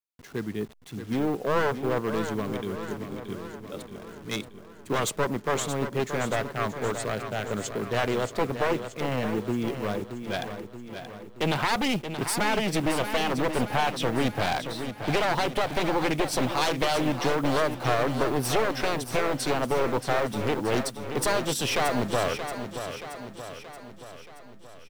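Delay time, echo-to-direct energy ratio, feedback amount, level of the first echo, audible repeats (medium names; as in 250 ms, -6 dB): 627 ms, -7.5 dB, 56%, -9.0 dB, 6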